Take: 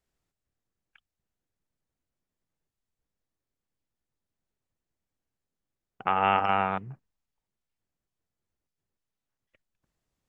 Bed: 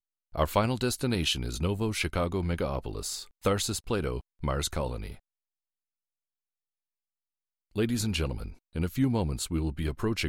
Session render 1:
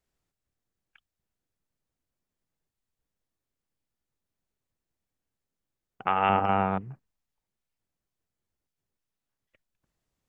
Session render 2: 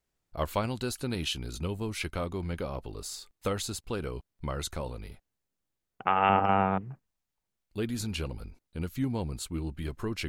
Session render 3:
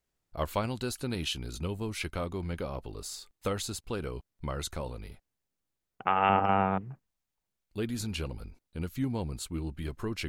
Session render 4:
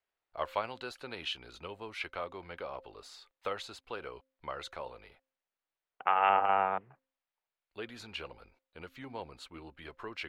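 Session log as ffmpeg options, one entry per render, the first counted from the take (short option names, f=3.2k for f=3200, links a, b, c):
-filter_complex "[0:a]asettb=1/sr,asplit=3[a][b][c];[a]atrim=end=6.294[d];[b]atrim=start=6.29:end=6.81,asetpts=PTS-STARTPTS,afade=t=in:d=0.004:c=qsin,afade=t=out:st=0.516:d=0.004:c=qsin,tiltshelf=f=870:g=6.5[e];[c]atrim=start=6.806[f];[d][e]acrossfade=d=0.004:c1=hsin:c2=qsin[g];[g][f]acrossfade=d=0.004:c1=qsin:c2=hsin"
-filter_complex "[1:a]volume=-4.5dB[a];[0:a][a]amix=inputs=2:normalize=0"
-af "volume=-1dB"
-filter_complex "[0:a]acrossover=split=470 3900:gain=0.1 1 0.0891[a][b][c];[a][b][c]amix=inputs=3:normalize=0,bandreject=f=264.3:t=h:w=4,bandreject=f=528.6:t=h:w=4"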